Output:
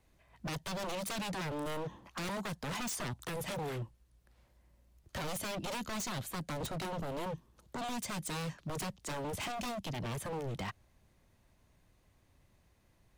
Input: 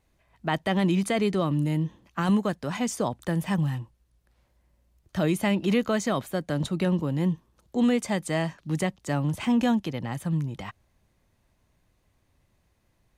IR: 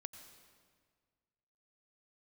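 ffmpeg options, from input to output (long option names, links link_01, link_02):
-filter_complex "[0:a]asettb=1/sr,asplit=3[link_01][link_02][link_03];[link_01]atrim=end=1.104[link_04];[link_02]atrim=start=1.1:end=3.34,asetpts=PTS-STARTPTS,afade=type=in:duration=0.004:curve=qsin,afade=type=out:start_time=2.236:duration=0.004:curve=qsin,equalizer=frequency=990:width=0.95:gain=10[link_05];[link_03]atrim=start=3.336[link_06];[link_04][link_05]acrossfade=duration=0.004:curve1=hsin:curve2=qsin[link_07];[link_07][link_06]acrossfade=duration=0.004:curve1=qsin:curve2=hsin,acrossover=split=170|3000[link_08][link_09][link_10];[link_09]acompressor=threshold=-34dB:ratio=6[link_11];[link_08][link_11][link_10]amix=inputs=3:normalize=0,aeval=exprs='0.0224*(abs(mod(val(0)/0.0224+3,4)-2)-1)':channel_layout=same"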